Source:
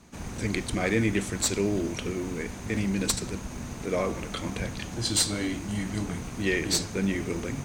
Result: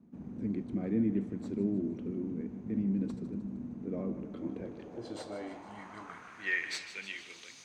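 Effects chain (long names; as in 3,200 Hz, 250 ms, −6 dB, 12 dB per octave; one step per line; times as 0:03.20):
echo with a time of its own for lows and highs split 320 Hz, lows 597 ms, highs 154 ms, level −13.5 dB
band-pass filter sweep 230 Hz → 4,400 Hz, 0:04.15–0:07.60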